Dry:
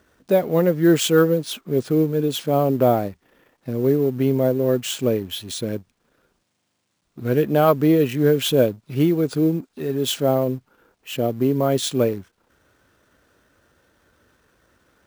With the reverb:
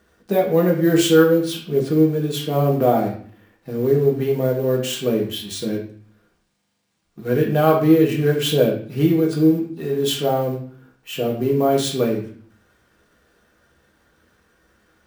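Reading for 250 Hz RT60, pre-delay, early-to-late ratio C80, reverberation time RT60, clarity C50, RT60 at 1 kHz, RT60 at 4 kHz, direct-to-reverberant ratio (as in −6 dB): 0.75 s, 3 ms, 10.0 dB, 0.50 s, 6.0 dB, 0.50 s, 0.45 s, −2.0 dB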